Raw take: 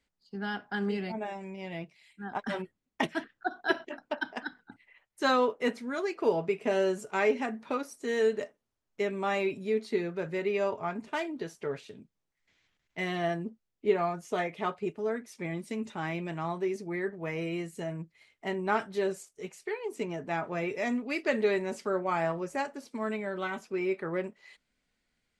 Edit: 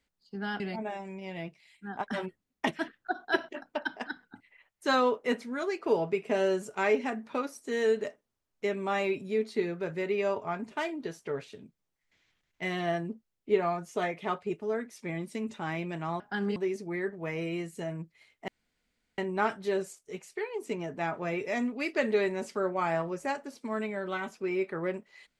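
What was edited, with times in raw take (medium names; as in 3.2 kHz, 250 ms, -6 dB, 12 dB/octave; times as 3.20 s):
0.60–0.96 s: move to 16.56 s
18.48 s: insert room tone 0.70 s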